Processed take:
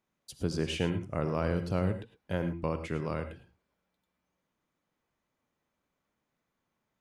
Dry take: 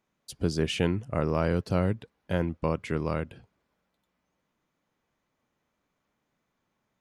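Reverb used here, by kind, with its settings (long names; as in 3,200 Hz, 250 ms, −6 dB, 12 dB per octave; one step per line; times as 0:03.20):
reverb whose tail is shaped and stops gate 130 ms rising, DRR 9 dB
level −4.5 dB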